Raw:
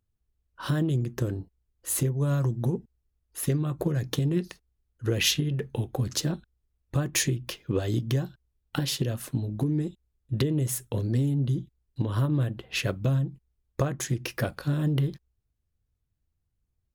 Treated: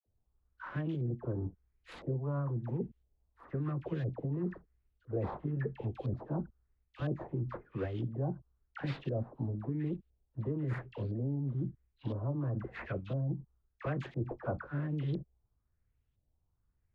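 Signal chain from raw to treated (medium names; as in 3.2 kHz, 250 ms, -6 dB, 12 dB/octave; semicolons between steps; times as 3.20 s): median filter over 15 samples; reverse; compression, threshold -33 dBFS, peak gain reduction 13 dB; reverse; phase dispersion lows, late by 63 ms, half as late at 1 kHz; LFO low-pass saw up 0.99 Hz 550–3600 Hz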